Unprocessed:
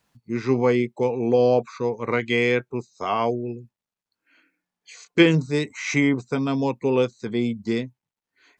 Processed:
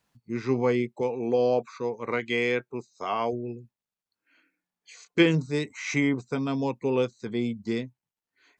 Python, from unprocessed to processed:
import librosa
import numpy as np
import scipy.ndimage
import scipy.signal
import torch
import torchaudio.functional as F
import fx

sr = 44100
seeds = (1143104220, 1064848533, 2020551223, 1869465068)

y = fx.low_shelf(x, sr, hz=110.0, db=-11.0, at=(1.01, 3.33))
y = F.gain(torch.from_numpy(y), -4.5).numpy()